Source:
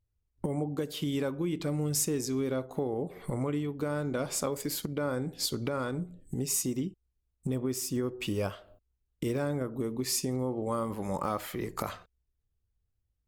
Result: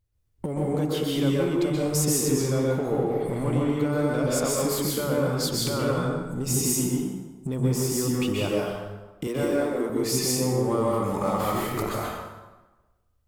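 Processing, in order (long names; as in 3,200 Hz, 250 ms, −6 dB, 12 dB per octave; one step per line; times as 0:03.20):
0:09.27–0:09.90: high-pass filter 230 Hz 24 dB per octave
in parallel at −6 dB: hard clipping −34.5 dBFS, distortion −7 dB
on the sum: dense smooth reverb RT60 1.2 s, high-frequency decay 0.7×, pre-delay 115 ms, DRR −4 dB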